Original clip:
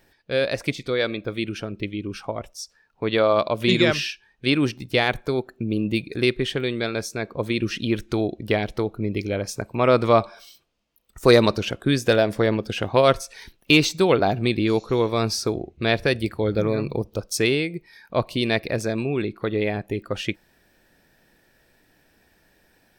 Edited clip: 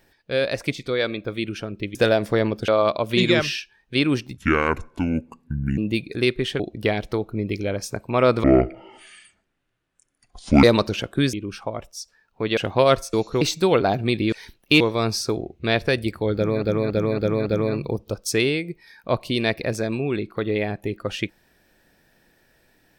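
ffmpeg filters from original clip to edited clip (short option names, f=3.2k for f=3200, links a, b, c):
-filter_complex "[0:a]asplit=18[a][b][c][d][e][f][g][h][i][j][k][l][m][n][o][p][q][r];[a]atrim=end=1.952[s];[b]atrim=start=12.018:end=12.752[t];[c]atrim=start=3.188:end=4.884[u];[d]atrim=start=4.88:end=5.78,asetpts=PTS-STARTPTS,asetrate=28224,aresample=44100[v];[e]atrim=start=5.776:end=6.602[w];[f]atrim=start=8.248:end=10.094[x];[g]atrim=start=10.09:end=11.32,asetpts=PTS-STARTPTS,asetrate=24696,aresample=44100,atrim=end_sample=96862,asetpts=PTS-STARTPTS[y];[h]atrim=start=11.316:end=12.022[z];[i]atrim=start=1.948:end=3.192[aa];[j]atrim=start=12.748:end=13.312[ab];[k]atrim=start=14.698:end=14.982[ac];[l]atrim=start=13.788:end=14.702[ad];[m]atrim=start=13.308:end=13.792[ae];[n]atrim=start=14.978:end=16.802[af];[o]atrim=start=16.518:end=16.802[ag];[p]atrim=start=16.518:end=16.802[ah];[q]atrim=start=16.518:end=16.802[ai];[r]atrim=start=16.518[aj];[s][t]acrossfade=d=0.004:c1=hsin:c2=hsin[ak];[ak][u]acrossfade=d=0.004:c1=hsin:c2=hsin[al];[al][v]acrossfade=d=0.004:c1=hsin:c2=hsin[am];[am][w]acrossfade=d=0.004:c1=hsin:c2=hsin[an];[an][x]acrossfade=d=0.004:c1=hsin:c2=hsin[ao];[ao][y]acrossfade=d=0.004:c1=hsin:c2=hsin[ap];[ap][z]acrossfade=d=0.004:c1=hsin:c2=hsin[aq];[aq][aa]acrossfade=d=0.004:c1=hsin:c2=hsin[ar];[ar][ab]acrossfade=d=0.004:c1=hsin:c2=hsin[as];[as][ac]acrossfade=d=0.004:c1=hsin:c2=hsin[at];[at][ad]acrossfade=d=0.004:c1=hsin:c2=hsin[au];[au][ae]acrossfade=d=0.004:c1=hsin:c2=hsin[av];[av][af]acrossfade=d=0.004:c1=hsin:c2=hsin[aw];[aw][ag]acrossfade=d=0.004:c1=hsin:c2=hsin[ax];[ax][ah]acrossfade=d=0.004:c1=hsin:c2=hsin[ay];[ay][ai]acrossfade=d=0.004:c1=hsin:c2=hsin[az];[az][aj]acrossfade=d=0.004:c1=hsin:c2=hsin"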